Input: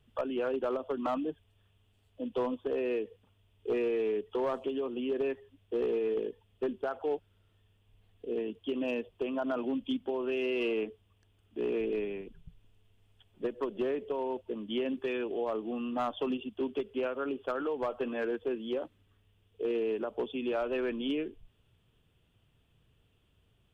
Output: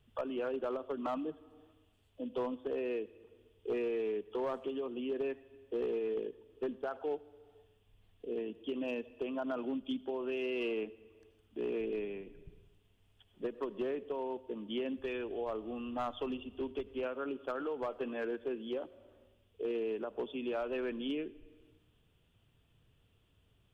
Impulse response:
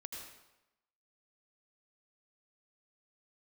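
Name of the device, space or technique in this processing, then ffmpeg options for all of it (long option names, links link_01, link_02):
compressed reverb return: -filter_complex "[0:a]asettb=1/sr,asplit=3[link_01][link_02][link_03];[link_01]atrim=end=14.974[link_04];[link_02]atrim=start=14.97:end=17.03,asetpts=PTS-STARTPTS,afade=type=in:duration=0.004:curve=qsin,afade=type=out:start_time=2.056:duration=0.004:curve=qsin,lowshelf=frequency=110:width_type=q:width=1.5:gain=11.5[link_05];[link_03]atrim=start=17.026[link_06];[link_04][link_05]acrossfade=duration=0.004:curve1=hsin:curve2=qsin[link_07];[link_07][link_06]acrossfade=duration=0.004:curve1=qsin:curve2=hsin,asplit=2[link_08][link_09];[1:a]atrim=start_sample=2205[link_10];[link_09][link_10]afir=irnorm=-1:irlink=0,acompressor=threshold=-48dB:ratio=10,volume=0dB[link_11];[link_08][link_11]amix=inputs=2:normalize=0,volume=-5dB"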